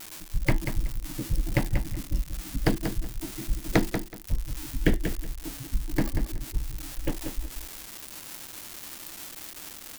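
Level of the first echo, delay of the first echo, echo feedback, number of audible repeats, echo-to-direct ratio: -8.0 dB, 0.187 s, 20%, 2, -8.0 dB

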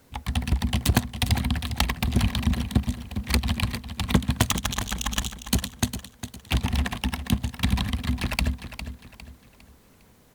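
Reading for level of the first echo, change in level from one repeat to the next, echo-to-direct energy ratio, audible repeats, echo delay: -11.0 dB, -9.0 dB, -10.5 dB, 3, 0.405 s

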